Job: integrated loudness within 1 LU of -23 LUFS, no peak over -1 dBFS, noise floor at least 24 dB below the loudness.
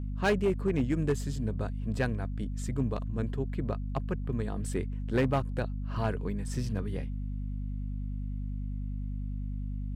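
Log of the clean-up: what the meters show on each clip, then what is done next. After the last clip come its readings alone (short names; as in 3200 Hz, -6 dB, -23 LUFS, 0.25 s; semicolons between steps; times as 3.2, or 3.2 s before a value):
clipped 0.5%; flat tops at -20.5 dBFS; hum 50 Hz; harmonics up to 250 Hz; hum level -32 dBFS; loudness -33.0 LUFS; peak -20.5 dBFS; loudness target -23.0 LUFS
-> clip repair -20.5 dBFS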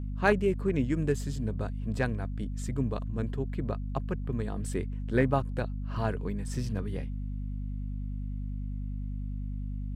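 clipped 0.0%; hum 50 Hz; harmonics up to 250 Hz; hum level -32 dBFS
-> de-hum 50 Hz, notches 5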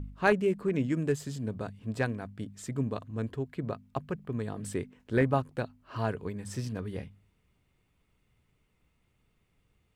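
hum none; loudness -33.0 LUFS; peak -11.5 dBFS; loudness target -23.0 LUFS
-> gain +10 dB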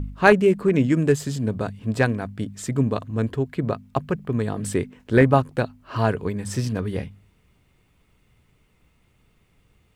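loudness -23.0 LUFS; peak -1.5 dBFS; noise floor -63 dBFS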